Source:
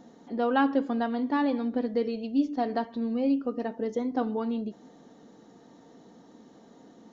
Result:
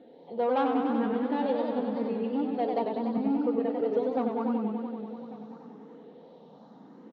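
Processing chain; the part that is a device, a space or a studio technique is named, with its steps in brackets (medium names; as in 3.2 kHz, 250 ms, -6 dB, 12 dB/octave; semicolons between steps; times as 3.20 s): 3.17–3.81 s: high-pass 230 Hz 24 dB/octave; barber-pole phaser into a guitar amplifier (barber-pole phaser +0.83 Hz; saturation -25.5 dBFS, distortion -13 dB; cabinet simulation 110–4000 Hz, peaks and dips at 110 Hz -9 dB, 170 Hz +7 dB, 490 Hz +7 dB, 900 Hz +4 dB, 1.8 kHz -4 dB); delay 1142 ms -19 dB; modulated delay 95 ms, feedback 79%, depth 124 cents, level -5 dB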